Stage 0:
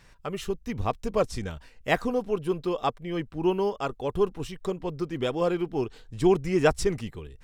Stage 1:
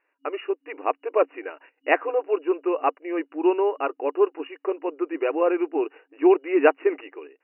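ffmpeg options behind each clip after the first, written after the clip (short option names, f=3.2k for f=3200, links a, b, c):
-af "agate=range=-17dB:threshold=-47dB:ratio=16:detection=peak,afftfilt=real='re*between(b*sr/4096,270,2900)':imag='im*between(b*sr/4096,270,2900)':win_size=4096:overlap=0.75,volume=4.5dB"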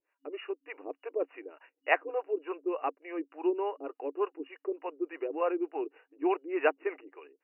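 -filter_complex "[0:a]acrossover=split=470[a][b];[a]aeval=exprs='val(0)*(1-1/2+1/2*cos(2*PI*3.4*n/s))':c=same[c];[b]aeval=exprs='val(0)*(1-1/2-1/2*cos(2*PI*3.4*n/s))':c=same[d];[c][d]amix=inputs=2:normalize=0,volume=-4dB"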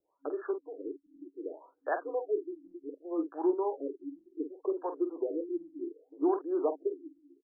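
-filter_complex "[0:a]acrossover=split=260|3000[a][b][c];[b]acompressor=threshold=-42dB:ratio=2.5[d];[a][d][c]amix=inputs=3:normalize=0,asplit=2[e][f];[f]adelay=47,volume=-8.5dB[g];[e][g]amix=inputs=2:normalize=0,afftfilt=real='re*lt(b*sr/1024,320*pow(1800/320,0.5+0.5*sin(2*PI*0.66*pts/sr)))':imag='im*lt(b*sr/1024,320*pow(1800/320,0.5+0.5*sin(2*PI*0.66*pts/sr)))':win_size=1024:overlap=0.75,volume=7.5dB"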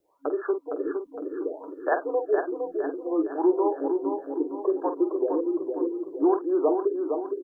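-filter_complex "[0:a]asplit=2[a][b];[b]acompressor=threshold=-38dB:ratio=6,volume=-2dB[c];[a][c]amix=inputs=2:normalize=0,aecho=1:1:461|922|1383|1844|2305|2766:0.531|0.25|0.117|0.0551|0.0259|0.0122,volume=5dB"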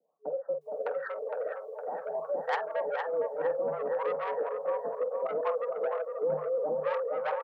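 -filter_complex "[0:a]asoftclip=type=tanh:threshold=-22.5dB,afreqshift=150,acrossover=split=670[a][b];[b]adelay=610[c];[a][c]amix=inputs=2:normalize=0"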